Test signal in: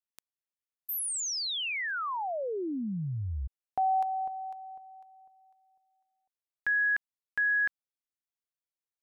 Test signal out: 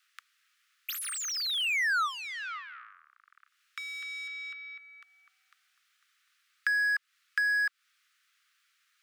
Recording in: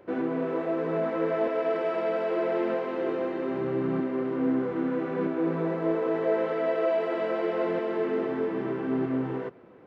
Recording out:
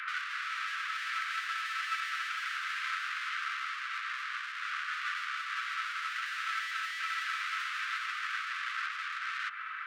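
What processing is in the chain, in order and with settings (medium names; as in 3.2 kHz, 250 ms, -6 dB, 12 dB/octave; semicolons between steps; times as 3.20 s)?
octave divider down 2 oct, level -5 dB; overdrive pedal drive 37 dB, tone 4.2 kHz, clips at -13.5 dBFS; compression 6:1, threshold -29 dBFS; steep high-pass 1.2 kHz 96 dB/octave; treble shelf 4.2 kHz -10.5 dB; trim +3 dB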